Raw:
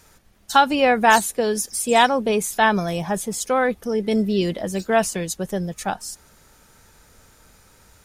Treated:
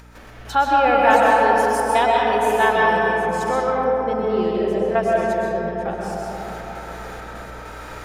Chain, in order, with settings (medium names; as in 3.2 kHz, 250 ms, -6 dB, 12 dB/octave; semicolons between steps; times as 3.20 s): companding laws mixed up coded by mu; tone controls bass -14 dB, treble -15 dB; harmonic-percussive split harmonic +8 dB; 0.84–2.99 s: treble shelf 4.3 kHz +10 dB; upward compressor, threshold -16 dBFS; trance gate ".x.xxxxx.xxx" 100 bpm -12 dB; hum 60 Hz, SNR 19 dB; algorithmic reverb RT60 4.5 s, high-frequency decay 0.3×, pre-delay 85 ms, DRR -4.5 dB; trim -10 dB